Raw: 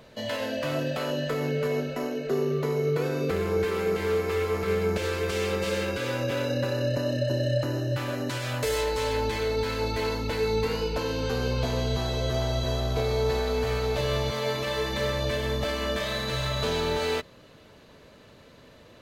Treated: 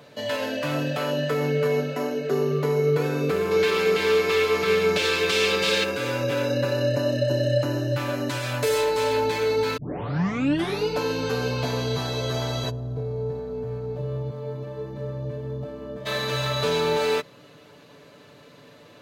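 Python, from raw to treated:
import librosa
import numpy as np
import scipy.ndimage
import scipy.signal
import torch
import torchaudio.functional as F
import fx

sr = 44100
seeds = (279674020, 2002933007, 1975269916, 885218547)

y = fx.peak_eq(x, sr, hz=3600.0, db=11.0, octaves=1.7, at=(3.51, 5.84))
y = fx.curve_eq(y, sr, hz=(140.0, 460.0, 1500.0, 2200.0), db=(0, -9, -21, -27), at=(12.69, 16.05), fade=0.02)
y = fx.edit(y, sr, fx.tape_start(start_s=9.77, length_s=1.11), tone=tone)
y = scipy.signal.sosfilt(scipy.signal.butter(2, 120.0, 'highpass', fs=sr, output='sos'), y)
y = y + 0.47 * np.pad(y, (int(6.9 * sr / 1000.0), 0))[:len(y)]
y = y * 10.0 ** (2.0 / 20.0)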